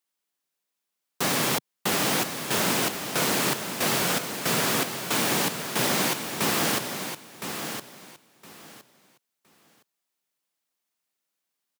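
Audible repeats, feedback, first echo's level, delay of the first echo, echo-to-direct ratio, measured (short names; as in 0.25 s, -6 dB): 2, 20%, -8.5 dB, 1.014 s, -8.5 dB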